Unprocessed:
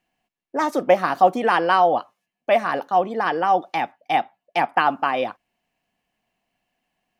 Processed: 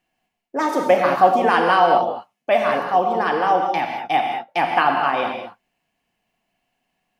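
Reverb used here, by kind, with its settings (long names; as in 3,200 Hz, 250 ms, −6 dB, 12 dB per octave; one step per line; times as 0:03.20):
reverb whose tail is shaped and stops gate 240 ms flat, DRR 1.5 dB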